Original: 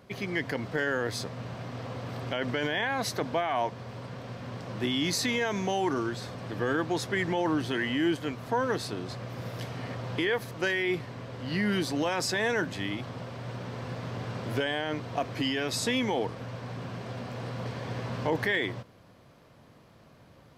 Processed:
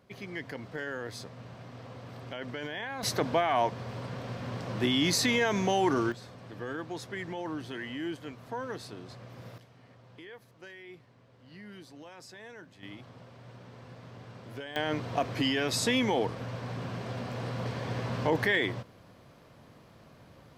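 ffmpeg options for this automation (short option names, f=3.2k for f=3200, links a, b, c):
-af "asetnsamples=n=441:p=0,asendcmd='3.03 volume volume 2dB;6.12 volume volume -9dB;9.58 volume volume -20dB;12.83 volume volume -12dB;14.76 volume volume 1dB',volume=-8dB"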